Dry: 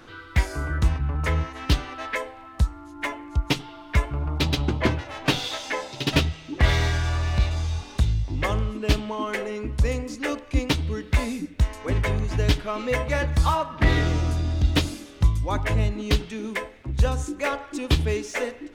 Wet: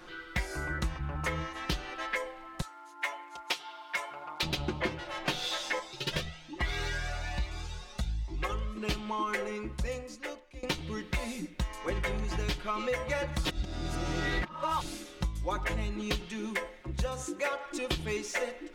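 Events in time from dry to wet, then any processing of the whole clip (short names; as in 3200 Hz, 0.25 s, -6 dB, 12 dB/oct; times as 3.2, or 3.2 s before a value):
2.61–4.43 HPF 650 Hz
5.79–8.77 cascading flanger rising 1.2 Hz
9.39–10.63 fade out, to -20.5 dB
13.45–14.81 reverse
17.06–17.66 HPF 95 Hz
whole clip: bell 120 Hz -6.5 dB 2.2 oct; comb 5.6 ms, depth 68%; compressor 6:1, threshold -25 dBFS; gain -3 dB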